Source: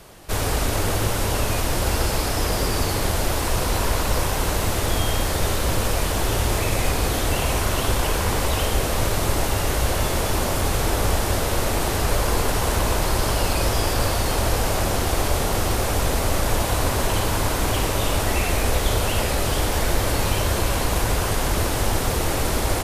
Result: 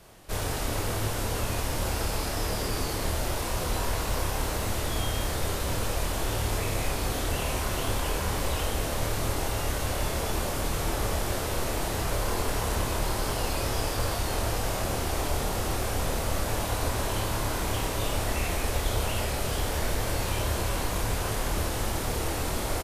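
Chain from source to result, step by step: doubling 27 ms -4 dB; trim -8.5 dB

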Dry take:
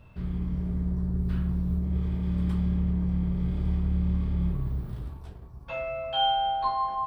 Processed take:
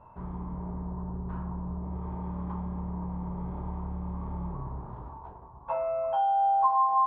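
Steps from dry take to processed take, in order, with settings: bass shelf 300 Hz -10.5 dB; compression 12:1, threshold -32 dBFS, peak gain reduction 11 dB; resonant low-pass 950 Hz, resonance Q 5.8; trim +2 dB

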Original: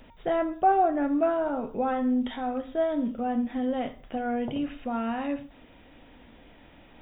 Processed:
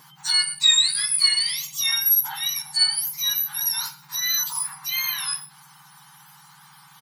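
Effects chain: spectrum inverted on a logarithmic axis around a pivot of 1.7 kHz; speakerphone echo 120 ms, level -19 dB; trim +9 dB

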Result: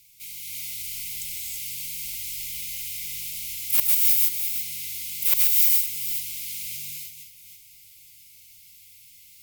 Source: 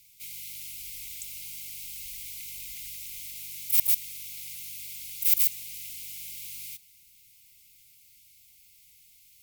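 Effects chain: chunks repeated in reverse 268 ms, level -8.5 dB; gated-style reverb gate 360 ms rising, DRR -2.5 dB; one-sided clip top -10 dBFS; trim +2 dB

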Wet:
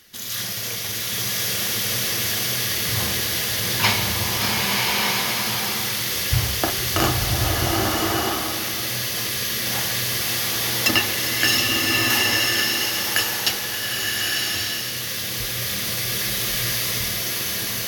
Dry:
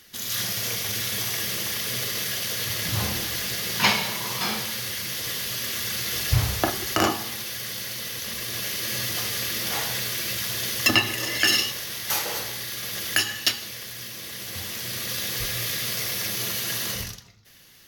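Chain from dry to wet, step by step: swelling reverb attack 1180 ms, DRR -3 dB

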